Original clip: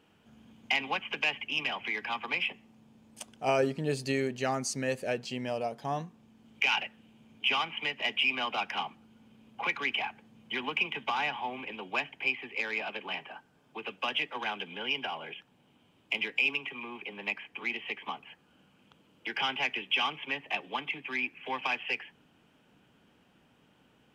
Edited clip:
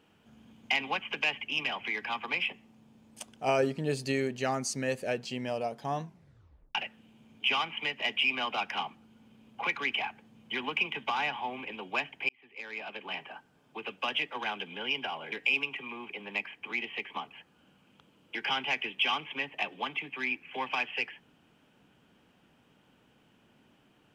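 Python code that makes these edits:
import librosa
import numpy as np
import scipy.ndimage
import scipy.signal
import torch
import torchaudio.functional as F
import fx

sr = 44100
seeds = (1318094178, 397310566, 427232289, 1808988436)

y = fx.edit(x, sr, fx.tape_stop(start_s=6.02, length_s=0.73),
    fx.fade_in_span(start_s=12.29, length_s=0.96),
    fx.cut(start_s=15.32, length_s=0.92), tone=tone)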